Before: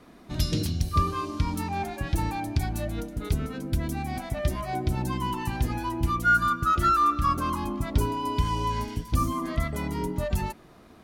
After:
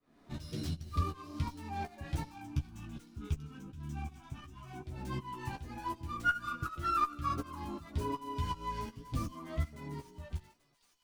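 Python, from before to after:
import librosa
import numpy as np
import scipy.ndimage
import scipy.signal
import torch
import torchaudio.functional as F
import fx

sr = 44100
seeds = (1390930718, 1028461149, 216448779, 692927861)

y = fx.fade_out_tail(x, sr, length_s=1.92)
y = fx.fixed_phaser(y, sr, hz=2900.0, stages=8, at=(2.29, 4.86))
y = fx.tremolo_shape(y, sr, shape='saw_up', hz=2.7, depth_pct=95)
y = fx.chorus_voices(y, sr, voices=4, hz=1.2, base_ms=10, depth_ms=3.0, mix_pct=40)
y = fx.doubler(y, sr, ms=14.0, db=-6)
y = fx.echo_wet_highpass(y, sr, ms=837, feedback_pct=47, hz=4100.0, wet_db=-12.0)
y = fx.running_max(y, sr, window=3)
y = F.gain(torch.from_numpy(y), -4.5).numpy()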